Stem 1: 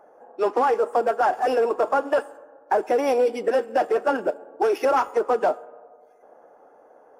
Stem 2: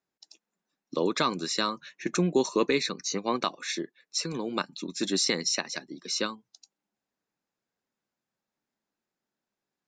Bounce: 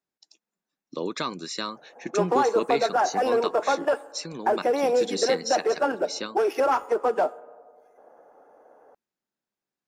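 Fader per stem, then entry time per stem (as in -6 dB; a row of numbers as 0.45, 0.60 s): -2.0, -3.5 dB; 1.75, 0.00 s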